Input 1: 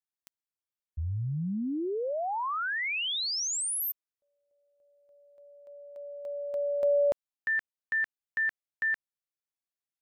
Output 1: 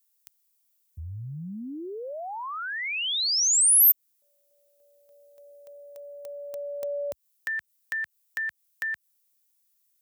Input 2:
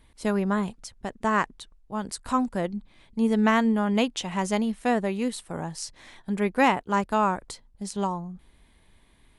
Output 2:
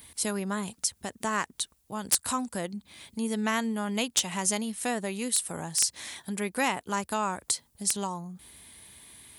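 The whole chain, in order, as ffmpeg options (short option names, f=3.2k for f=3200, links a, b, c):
-af "highpass=f=66:w=0.5412,highpass=f=66:w=1.3066,highshelf=f=8.8k:g=5,acompressor=threshold=-55dB:ratio=1.5:attack=74:release=74:detection=rms,crystalizer=i=4.5:c=0,aeval=exprs='(mod(4.73*val(0)+1,2)-1)/4.73':c=same,volume=3dB"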